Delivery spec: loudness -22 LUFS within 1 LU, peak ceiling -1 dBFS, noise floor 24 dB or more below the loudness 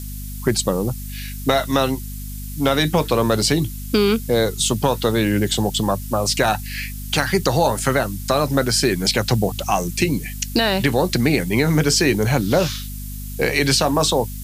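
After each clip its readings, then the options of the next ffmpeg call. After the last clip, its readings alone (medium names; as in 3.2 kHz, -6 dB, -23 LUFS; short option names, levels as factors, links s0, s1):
hum 50 Hz; highest harmonic 250 Hz; hum level -28 dBFS; noise floor -30 dBFS; noise floor target -44 dBFS; loudness -19.5 LUFS; peak level -4.0 dBFS; loudness target -22.0 LUFS
-> -af "bandreject=f=50:t=h:w=4,bandreject=f=100:t=h:w=4,bandreject=f=150:t=h:w=4,bandreject=f=200:t=h:w=4,bandreject=f=250:t=h:w=4"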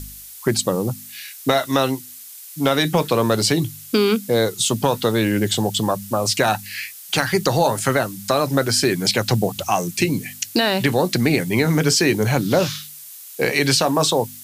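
hum not found; noise floor -39 dBFS; noise floor target -44 dBFS
-> -af "afftdn=nr=6:nf=-39"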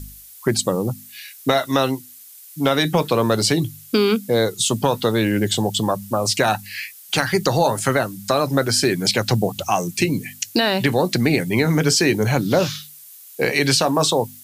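noise floor -43 dBFS; noise floor target -44 dBFS
-> -af "afftdn=nr=6:nf=-43"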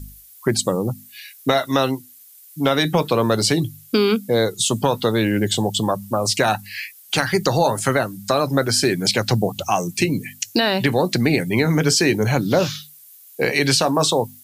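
noise floor -46 dBFS; loudness -19.5 LUFS; peak level -5.0 dBFS; loudness target -22.0 LUFS
-> -af "volume=0.75"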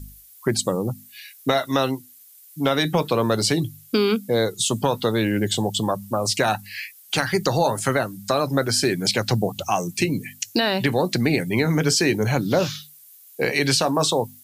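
loudness -22.0 LUFS; peak level -7.5 dBFS; noise floor -49 dBFS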